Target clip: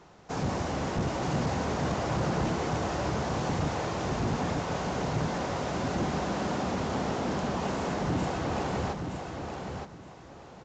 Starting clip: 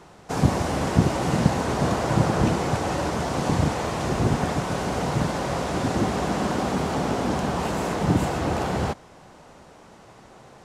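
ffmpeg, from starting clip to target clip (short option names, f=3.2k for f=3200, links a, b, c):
-af "aresample=16000,asoftclip=type=hard:threshold=-19dB,aresample=44100,aecho=1:1:920|1840|2760:0.501|0.115|0.0265,volume=-6dB"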